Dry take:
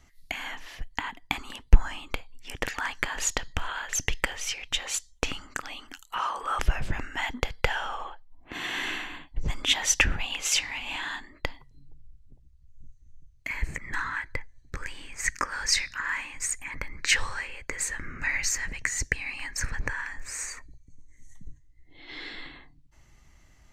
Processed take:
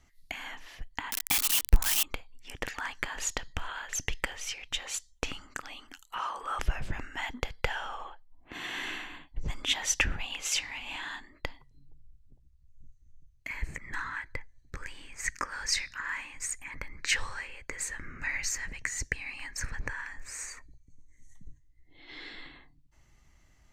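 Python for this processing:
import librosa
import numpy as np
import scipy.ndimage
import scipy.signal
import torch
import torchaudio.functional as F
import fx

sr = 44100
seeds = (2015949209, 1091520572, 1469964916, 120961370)

y = fx.crossing_spikes(x, sr, level_db=-10.5, at=(1.12, 2.03))
y = y * 10.0 ** (-5.0 / 20.0)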